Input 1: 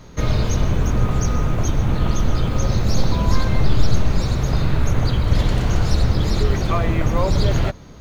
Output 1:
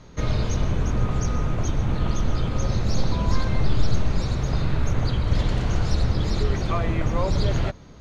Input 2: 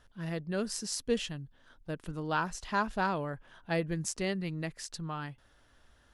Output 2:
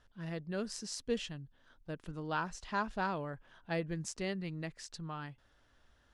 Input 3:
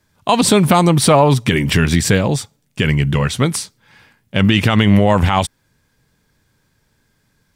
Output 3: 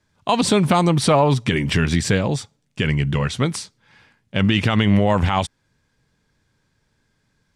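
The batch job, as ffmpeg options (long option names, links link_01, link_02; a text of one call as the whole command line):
ffmpeg -i in.wav -af "lowpass=7800,volume=-4.5dB" out.wav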